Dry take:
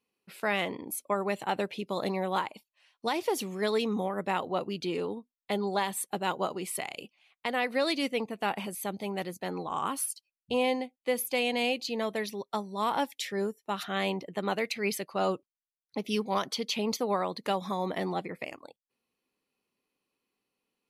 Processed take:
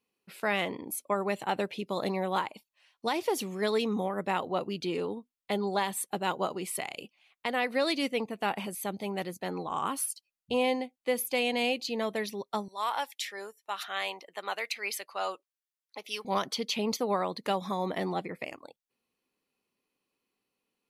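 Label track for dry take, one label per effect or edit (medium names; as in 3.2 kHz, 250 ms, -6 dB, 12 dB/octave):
12.680000	16.250000	high-pass 780 Hz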